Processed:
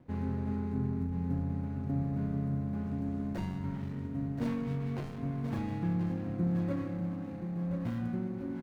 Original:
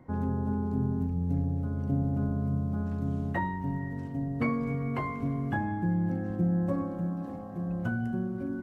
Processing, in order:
running median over 41 samples
repeating echo 1,028 ms, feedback 27%, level −7.5 dB
level −3.5 dB

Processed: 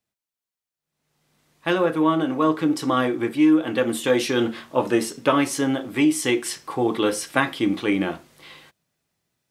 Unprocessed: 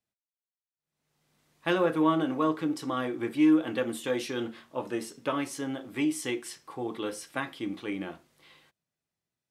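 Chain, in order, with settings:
speech leveller within 4 dB 0.5 s
level +8.5 dB

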